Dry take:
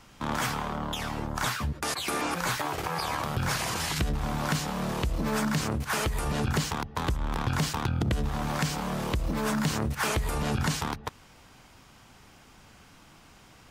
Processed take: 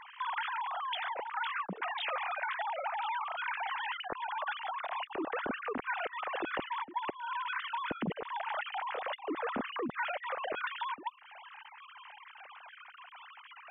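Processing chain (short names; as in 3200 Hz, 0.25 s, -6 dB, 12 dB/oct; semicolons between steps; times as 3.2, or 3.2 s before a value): sine-wave speech; 1.56–3.14 HPF 220 Hz 24 dB/oct; compressor 3:1, threshold -41 dBFS, peak gain reduction 15.5 dB; gain +3.5 dB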